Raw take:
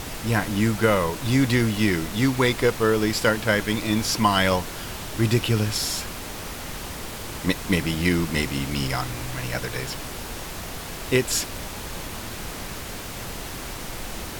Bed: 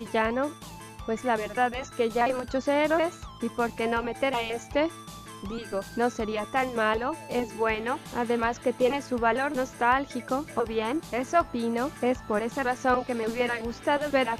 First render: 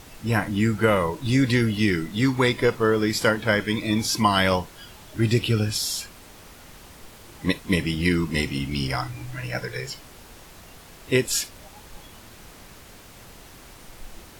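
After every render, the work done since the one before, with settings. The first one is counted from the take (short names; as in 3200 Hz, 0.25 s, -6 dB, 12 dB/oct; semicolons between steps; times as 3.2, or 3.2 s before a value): noise print and reduce 12 dB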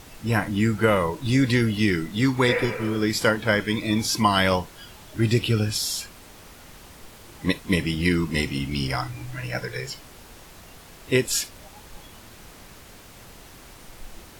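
2.51–2.95 spectral repair 410–2900 Hz both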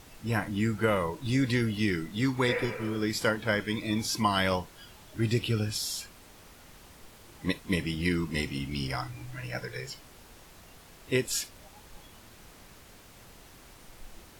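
gain -6.5 dB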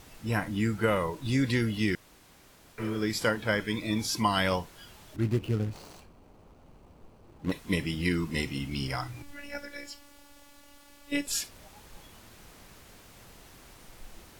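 1.95–2.78 room tone; 5.16–7.52 median filter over 25 samples; 9.22–11.27 robotiser 286 Hz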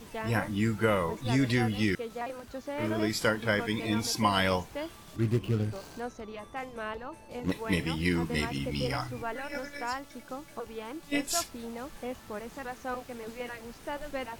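add bed -12 dB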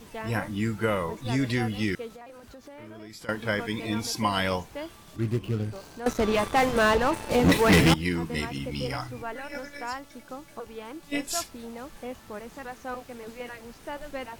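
2.14–3.29 compressor 4:1, threshold -43 dBFS; 6.06–7.94 sample leveller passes 5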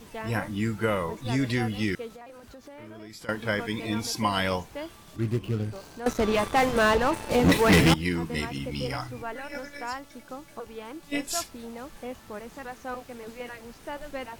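nothing audible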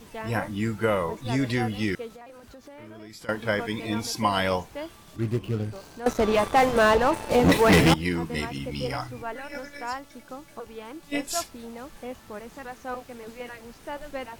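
dynamic EQ 670 Hz, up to +4 dB, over -35 dBFS, Q 0.92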